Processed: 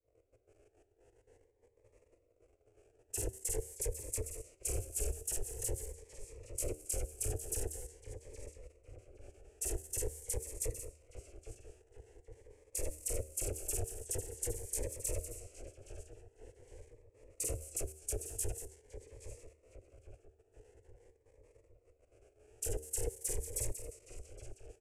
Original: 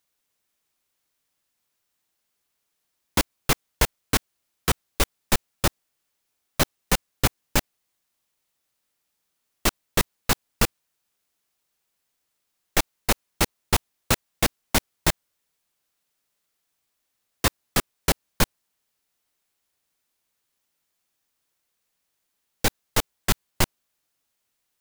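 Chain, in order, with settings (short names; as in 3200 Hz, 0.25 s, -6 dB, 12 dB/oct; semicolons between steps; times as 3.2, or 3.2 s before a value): stepped spectrum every 50 ms; dispersion lows, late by 45 ms, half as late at 2700 Hz; power-law curve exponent 0.5; level quantiser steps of 15 dB; LPF 12000 Hz 12 dB/oct; de-hum 76.67 Hz, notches 11; formant shift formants -4 st; EQ curve 110 Hz 0 dB, 170 Hz -29 dB, 450 Hz +6 dB, 1100 Hz -24 dB, 2600 Hz -13 dB, 3700 Hz -27 dB, 7900 Hz +4 dB; feedback echo 0.813 s, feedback 55%, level -10 dB; on a send at -20 dB: reverb RT60 1.3 s, pre-delay 3 ms; on the sum: low-pass opened by the level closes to 740 Hz, open at -35.5 dBFS; cascading phaser rising 0.46 Hz; gain -2 dB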